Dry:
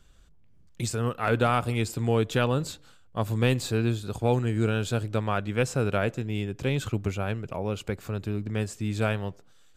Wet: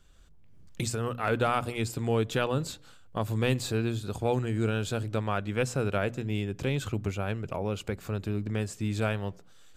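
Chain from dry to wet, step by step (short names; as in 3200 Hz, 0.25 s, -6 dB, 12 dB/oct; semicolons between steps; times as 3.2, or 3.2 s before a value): recorder AGC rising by 12 dB/s; notches 60/120/180/240 Hz; gain -2.5 dB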